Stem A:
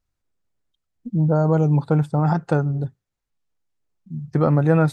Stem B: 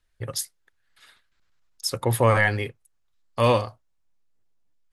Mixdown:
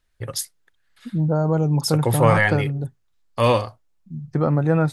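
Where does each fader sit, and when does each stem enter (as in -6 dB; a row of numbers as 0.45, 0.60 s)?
-2.0, +2.0 dB; 0.00, 0.00 s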